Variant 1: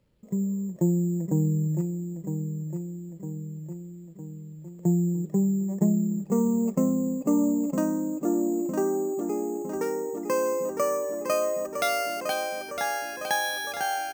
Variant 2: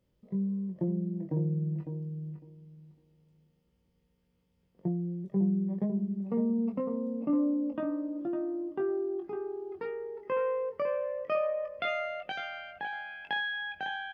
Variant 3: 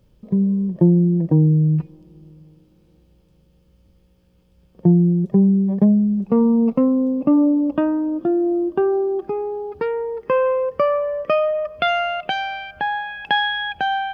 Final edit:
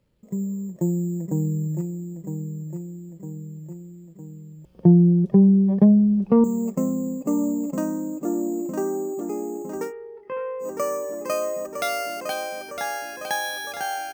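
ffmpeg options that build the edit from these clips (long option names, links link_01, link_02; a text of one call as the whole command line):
ffmpeg -i take0.wav -i take1.wav -i take2.wav -filter_complex "[0:a]asplit=3[link_01][link_02][link_03];[link_01]atrim=end=4.652[link_04];[2:a]atrim=start=4.648:end=6.442[link_05];[link_02]atrim=start=6.438:end=9.93[link_06];[1:a]atrim=start=9.83:end=10.69[link_07];[link_03]atrim=start=10.59[link_08];[link_04][link_05]acrossfade=duration=0.004:curve1=hsin:curve2=hsin[link_09];[link_09][link_06]acrossfade=duration=0.004:curve1=hsin:curve2=hsin[link_10];[link_10][link_07]acrossfade=duration=0.1:curve1=tri:curve2=tri[link_11];[link_11][link_08]acrossfade=duration=0.1:curve1=tri:curve2=tri" out.wav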